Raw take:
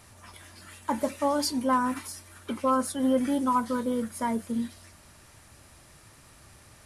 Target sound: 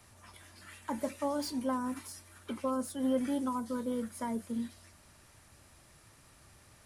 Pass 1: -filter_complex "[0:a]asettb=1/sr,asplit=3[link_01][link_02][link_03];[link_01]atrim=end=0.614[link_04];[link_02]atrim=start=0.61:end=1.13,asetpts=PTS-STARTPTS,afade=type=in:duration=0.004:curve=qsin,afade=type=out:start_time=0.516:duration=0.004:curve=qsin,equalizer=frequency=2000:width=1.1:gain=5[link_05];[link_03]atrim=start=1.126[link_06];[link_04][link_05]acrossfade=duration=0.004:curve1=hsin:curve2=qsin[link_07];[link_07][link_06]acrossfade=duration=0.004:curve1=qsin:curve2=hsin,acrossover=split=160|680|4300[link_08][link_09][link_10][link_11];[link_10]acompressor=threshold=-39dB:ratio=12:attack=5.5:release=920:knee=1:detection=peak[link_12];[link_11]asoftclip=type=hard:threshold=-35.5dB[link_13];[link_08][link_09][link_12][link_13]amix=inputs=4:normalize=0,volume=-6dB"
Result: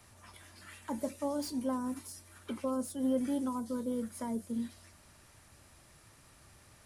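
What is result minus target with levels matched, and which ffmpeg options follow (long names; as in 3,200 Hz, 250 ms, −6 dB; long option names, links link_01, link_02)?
downward compressor: peak gain reduction +8 dB
-filter_complex "[0:a]asettb=1/sr,asplit=3[link_01][link_02][link_03];[link_01]atrim=end=0.614[link_04];[link_02]atrim=start=0.61:end=1.13,asetpts=PTS-STARTPTS,afade=type=in:duration=0.004:curve=qsin,afade=type=out:start_time=0.516:duration=0.004:curve=qsin,equalizer=frequency=2000:width=1.1:gain=5[link_05];[link_03]atrim=start=1.126[link_06];[link_04][link_05]acrossfade=duration=0.004:curve1=hsin:curve2=qsin[link_07];[link_07][link_06]acrossfade=duration=0.004:curve1=qsin:curve2=hsin,acrossover=split=160|680|4300[link_08][link_09][link_10][link_11];[link_10]acompressor=threshold=-30.5dB:ratio=12:attack=5.5:release=920:knee=1:detection=peak[link_12];[link_11]asoftclip=type=hard:threshold=-35.5dB[link_13];[link_08][link_09][link_12][link_13]amix=inputs=4:normalize=0,volume=-6dB"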